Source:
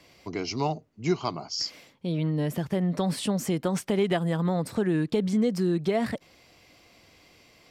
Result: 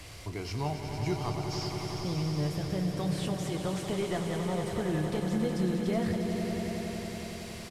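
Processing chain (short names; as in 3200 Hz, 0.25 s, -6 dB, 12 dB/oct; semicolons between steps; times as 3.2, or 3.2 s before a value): delta modulation 64 kbps, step -41 dBFS; resonant low shelf 140 Hz +11 dB, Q 1.5; in parallel at +1 dB: compressor, threshold -39 dBFS, peak gain reduction 17 dB; on the sum: doubler 27 ms -11 dB; swelling echo 92 ms, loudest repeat 5, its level -9 dB; gain -8.5 dB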